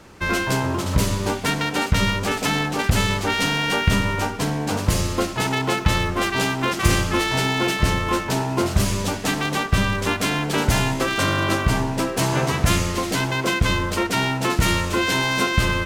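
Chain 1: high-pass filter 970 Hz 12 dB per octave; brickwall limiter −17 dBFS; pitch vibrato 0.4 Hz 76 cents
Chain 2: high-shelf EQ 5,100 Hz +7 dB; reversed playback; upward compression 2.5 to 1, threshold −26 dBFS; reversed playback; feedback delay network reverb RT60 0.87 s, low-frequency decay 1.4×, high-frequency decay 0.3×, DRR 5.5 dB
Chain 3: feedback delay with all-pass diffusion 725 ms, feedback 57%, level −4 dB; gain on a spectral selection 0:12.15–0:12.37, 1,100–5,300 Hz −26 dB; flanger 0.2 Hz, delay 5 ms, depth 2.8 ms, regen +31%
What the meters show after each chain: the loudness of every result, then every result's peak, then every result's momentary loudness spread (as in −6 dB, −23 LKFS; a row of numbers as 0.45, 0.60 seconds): −27.5, −19.0, −23.0 LKFS; −16.5, −1.5, −7.5 dBFS; 3, 3, 3 LU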